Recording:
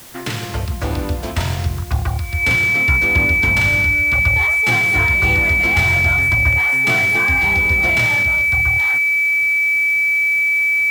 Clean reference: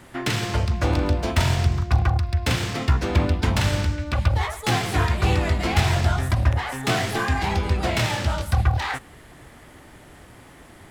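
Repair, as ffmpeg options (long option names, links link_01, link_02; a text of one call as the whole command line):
ffmpeg -i in.wav -af "bandreject=frequency=2300:width=30,afwtdn=0.01,asetnsamples=nb_out_samples=441:pad=0,asendcmd='8.23 volume volume 4.5dB',volume=0dB" out.wav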